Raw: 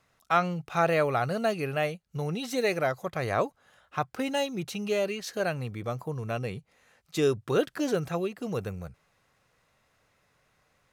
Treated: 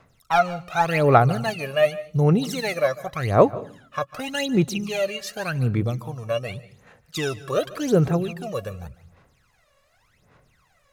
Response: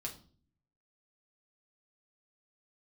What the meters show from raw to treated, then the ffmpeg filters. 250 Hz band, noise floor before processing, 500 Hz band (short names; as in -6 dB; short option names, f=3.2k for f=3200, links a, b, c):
+7.0 dB, -70 dBFS, +5.5 dB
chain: -filter_complex "[0:a]asoftclip=type=hard:threshold=-14dB,aphaser=in_gain=1:out_gain=1:delay=1.8:decay=0.8:speed=0.87:type=sinusoidal,asplit=2[a][b];[1:a]atrim=start_sample=2205,adelay=147[c];[b][c]afir=irnorm=-1:irlink=0,volume=-16dB[d];[a][d]amix=inputs=2:normalize=0,volume=1dB"